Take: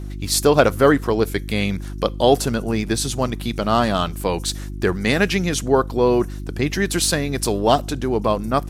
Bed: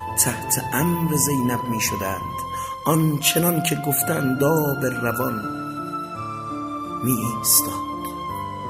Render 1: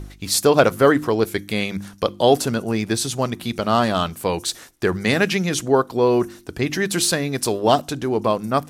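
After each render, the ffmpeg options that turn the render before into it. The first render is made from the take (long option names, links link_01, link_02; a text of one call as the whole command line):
ffmpeg -i in.wav -af "bandreject=frequency=50:width_type=h:width=4,bandreject=frequency=100:width_type=h:width=4,bandreject=frequency=150:width_type=h:width=4,bandreject=frequency=200:width_type=h:width=4,bandreject=frequency=250:width_type=h:width=4,bandreject=frequency=300:width_type=h:width=4,bandreject=frequency=350:width_type=h:width=4" out.wav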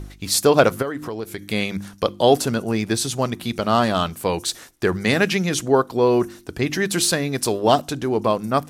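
ffmpeg -i in.wav -filter_complex "[0:a]asplit=3[link_01][link_02][link_03];[link_01]afade=type=out:start_time=0.81:duration=0.02[link_04];[link_02]acompressor=threshold=-28dB:ratio=3:attack=3.2:release=140:knee=1:detection=peak,afade=type=in:start_time=0.81:duration=0.02,afade=type=out:start_time=1.41:duration=0.02[link_05];[link_03]afade=type=in:start_time=1.41:duration=0.02[link_06];[link_04][link_05][link_06]amix=inputs=3:normalize=0" out.wav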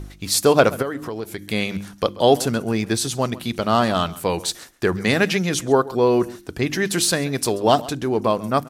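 ffmpeg -i in.wav -filter_complex "[0:a]asplit=2[link_01][link_02];[link_02]adelay=134.1,volume=-19dB,highshelf=frequency=4000:gain=-3.02[link_03];[link_01][link_03]amix=inputs=2:normalize=0" out.wav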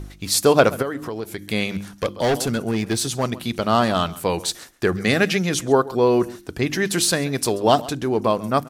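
ffmpeg -i in.wav -filter_complex "[0:a]asettb=1/sr,asplit=3[link_01][link_02][link_03];[link_01]atrim=end=1.684[link_04];[link_02]atrim=start=1.68:end=3.24,asetpts=PTS-STARTPTS,afade=type=in:duration=0.004:curve=qsin,afade=type=out:start_time=1.556:duration=0.004:curve=qsin,asoftclip=type=hard:threshold=-16dB[link_05];[link_03]atrim=start=3.236[link_06];[link_04][link_05]acrossfade=duration=0.004:curve1=hsin:curve2=qsin[link_07];[link_07][link_06]acrossfade=duration=0.004:curve1=qsin:curve2=hsin,asettb=1/sr,asplit=3[link_08][link_09][link_10];[link_08]atrim=end=4.884[link_11];[link_09]atrim=start=4.88:end=5.38,asetpts=PTS-STARTPTS,afade=type=in:duration=0.004:curve=qsin,afade=type=out:start_time=0.496:duration=0.004:curve=qsin,asuperstop=centerf=940:order=4:qfactor=5[link_12];[link_10]atrim=start=5.376[link_13];[link_11][link_12]acrossfade=duration=0.004:curve1=hsin:curve2=qsin[link_14];[link_14][link_13]acrossfade=duration=0.004:curve1=qsin:curve2=hsin" out.wav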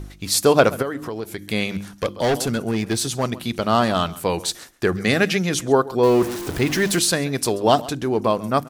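ffmpeg -i in.wav -filter_complex "[0:a]asettb=1/sr,asplit=3[link_01][link_02][link_03];[link_01]atrim=end=6.034[link_04];[link_02]atrim=start=6.03:end=6.99,asetpts=PTS-STARTPTS,afade=type=in:duration=0.004:curve=qsin,afade=type=out:start_time=0.956:duration=0.004:curve=qsin,aeval=exprs='val(0)+0.5*0.0562*sgn(val(0))':channel_layout=same[link_05];[link_03]atrim=start=6.986[link_06];[link_04][link_05]acrossfade=duration=0.004:curve1=hsin:curve2=qsin[link_07];[link_07][link_06]acrossfade=duration=0.004:curve1=qsin:curve2=hsin" out.wav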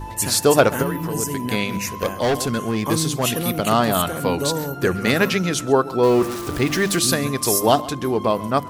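ffmpeg -i in.wav -i bed.wav -filter_complex "[1:a]volume=-5.5dB[link_01];[0:a][link_01]amix=inputs=2:normalize=0" out.wav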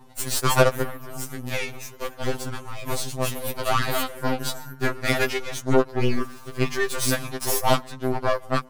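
ffmpeg -i in.wav -af "aeval=exprs='0.794*(cos(1*acos(clip(val(0)/0.794,-1,1)))-cos(1*PI/2))+0.0891*(cos(7*acos(clip(val(0)/0.794,-1,1)))-cos(7*PI/2))+0.0501*(cos(8*acos(clip(val(0)/0.794,-1,1)))-cos(8*PI/2))':channel_layout=same,afftfilt=real='re*2.45*eq(mod(b,6),0)':imag='im*2.45*eq(mod(b,6),0)':win_size=2048:overlap=0.75" out.wav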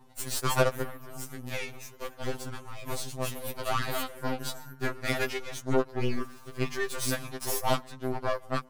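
ffmpeg -i in.wav -af "volume=-7dB" out.wav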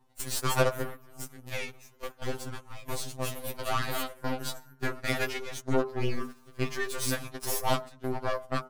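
ffmpeg -i in.wav -af "bandreject=frequency=49.41:width_type=h:width=4,bandreject=frequency=98.82:width_type=h:width=4,bandreject=frequency=148.23:width_type=h:width=4,bandreject=frequency=197.64:width_type=h:width=4,bandreject=frequency=247.05:width_type=h:width=4,bandreject=frequency=296.46:width_type=h:width=4,bandreject=frequency=345.87:width_type=h:width=4,bandreject=frequency=395.28:width_type=h:width=4,bandreject=frequency=444.69:width_type=h:width=4,bandreject=frequency=494.1:width_type=h:width=4,bandreject=frequency=543.51:width_type=h:width=4,bandreject=frequency=592.92:width_type=h:width=4,bandreject=frequency=642.33:width_type=h:width=4,bandreject=frequency=691.74:width_type=h:width=4,bandreject=frequency=741.15:width_type=h:width=4,bandreject=frequency=790.56:width_type=h:width=4,bandreject=frequency=839.97:width_type=h:width=4,bandreject=frequency=889.38:width_type=h:width=4,bandreject=frequency=938.79:width_type=h:width=4,bandreject=frequency=988.2:width_type=h:width=4,bandreject=frequency=1037.61:width_type=h:width=4,bandreject=frequency=1087.02:width_type=h:width=4,bandreject=frequency=1136.43:width_type=h:width=4,bandreject=frequency=1185.84:width_type=h:width=4,bandreject=frequency=1235.25:width_type=h:width=4,bandreject=frequency=1284.66:width_type=h:width=4,bandreject=frequency=1334.07:width_type=h:width=4,bandreject=frequency=1383.48:width_type=h:width=4,bandreject=frequency=1432.89:width_type=h:width=4,bandreject=frequency=1482.3:width_type=h:width=4,bandreject=frequency=1531.71:width_type=h:width=4,bandreject=frequency=1581.12:width_type=h:width=4,bandreject=frequency=1630.53:width_type=h:width=4,agate=range=-9dB:threshold=-37dB:ratio=16:detection=peak" out.wav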